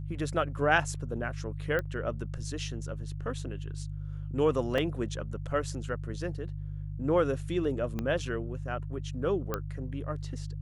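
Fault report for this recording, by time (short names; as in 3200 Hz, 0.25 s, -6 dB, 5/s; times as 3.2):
hum 50 Hz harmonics 3 -37 dBFS
1.79 pop -19 dBFS
4.78 gap 3.1 ms
7.99 pop -20 dBFS
9.54 pop -16 dBFS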